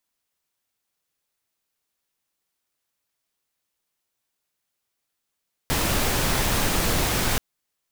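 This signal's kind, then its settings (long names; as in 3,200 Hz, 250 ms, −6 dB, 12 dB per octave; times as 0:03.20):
noise pink, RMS −22.5 dBFS 1.68 s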